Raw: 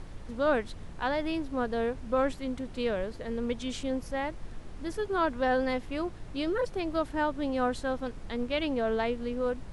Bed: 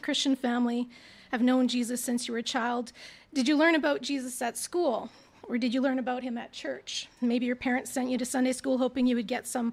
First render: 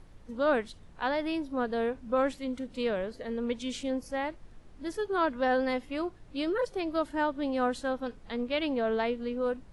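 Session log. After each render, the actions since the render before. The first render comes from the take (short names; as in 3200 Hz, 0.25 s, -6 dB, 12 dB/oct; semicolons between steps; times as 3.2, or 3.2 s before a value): noise print and reduce 10 dB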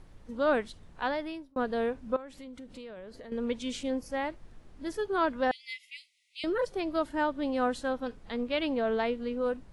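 1.03–1.56 fade out; 2.16–3.32 compressor, threshold -42 dBFS; 5.51–6.44 brick-wall FIR high-pass 1900 Hz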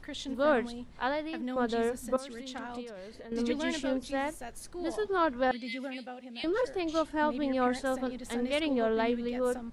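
add bed -12 dB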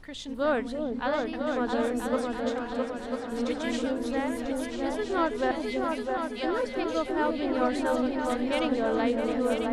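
repeats that get brighter 0.331 s, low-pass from 400 Hz, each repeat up 2 oct, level 0 dB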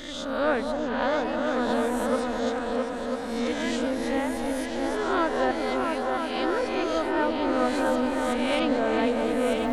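spectral swells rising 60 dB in 0.92 s; delay with a stepping band-pass 0.214 s, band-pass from 820 Hz, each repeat 1.4 oct, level -5.5 dB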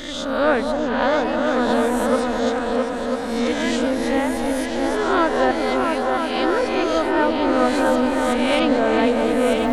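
gain +6.5 dB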